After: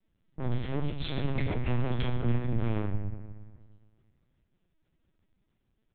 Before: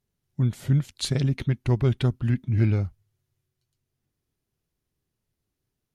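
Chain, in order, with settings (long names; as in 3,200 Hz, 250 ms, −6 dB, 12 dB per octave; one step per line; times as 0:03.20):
soft clipping −30 dBFS, distortion −6 dB
bucket-brigade delay 115 ms, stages 2,048, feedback 66%, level −14 dB
rectangular room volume 240 cubic metres, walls mixed, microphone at 1.5 metres
linear-prediction vocoder at 8 kHz pitch kept
0:01.35–0:02.53: multiband upward and downward compressor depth 70%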